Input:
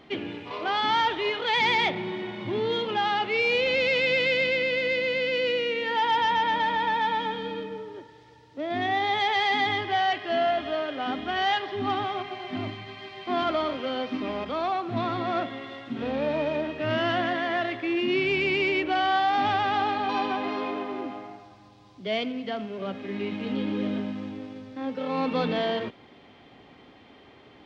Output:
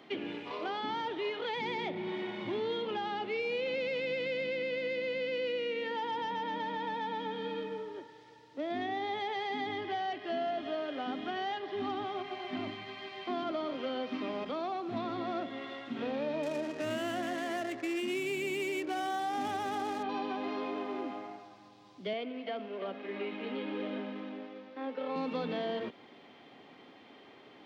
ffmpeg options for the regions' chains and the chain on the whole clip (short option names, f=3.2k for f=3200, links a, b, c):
-filter_complex "[0:a]asettb=1/sr,asplit=3[a][b][c];[a]atrim=end=16.434[d];[b]atrim=start=16.43:end=20.03,asetpts=PTS-STARTPTS,afade=t=in:d=0.004:c=qsin,afade=t=out:st=3.596:d=0.004:c=qsin,adynamicsmooth=sensitivity=7.5:basefreq=580,highshelf=f=3.5k:g=10[e];[c]atrim=start=20.026[f];[d][e]acrossfade=d=0.004:c1=hsin:c2=qsin[g];[g][f]acrossfade=d=0.004:c1=qsin:c2=hsin,asettb=1/sr,asplit=3[h][i][j];[h]atrim=end=22.134[k];[i]atrim=start=22.13:end=25.16,asetpts=PTS-STARTPTS,afade=t=in:d=0.004:c=qsin,afade=t=out:st=3.026:d=0.004:c=qsin,highpass=320,lowpass=3.3k,aecho=1:1:337:0.266,atrim=end_sample=133623[l];[j]atrim=start=25.156[m];[k][l]acrossfade=d=0.004:c1=hsin:c2=qsin[n];[n][m]acrossfade=d=0.004:c1=qsin:c2=hsin,highpass=190,acrossover=split=550|4100[o][p][q];[o]acompressor=threshold=-32dB:ratio=4[r];[p]acompressor=threshold=-38dB:ratio=4[s];[q]acompressor=threshold=-55dB:ratio=4[t];[r][s][t]amix=inputs=3:normalize=0,volume=-2.5dB"